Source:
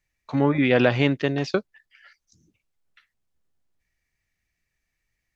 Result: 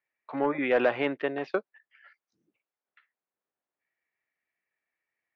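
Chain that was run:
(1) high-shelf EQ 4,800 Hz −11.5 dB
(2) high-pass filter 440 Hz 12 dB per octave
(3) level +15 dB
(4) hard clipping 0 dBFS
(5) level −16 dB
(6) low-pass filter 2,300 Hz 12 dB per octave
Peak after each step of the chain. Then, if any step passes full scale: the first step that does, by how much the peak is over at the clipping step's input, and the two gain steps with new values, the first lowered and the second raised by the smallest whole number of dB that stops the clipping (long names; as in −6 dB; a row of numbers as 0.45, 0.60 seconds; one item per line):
−5.0, −9.5, +5.5, 0.0, −16.0, −15.5 dBFS
step 3, 5.5 dB
step 3 +9 dB, step 5 −10 dB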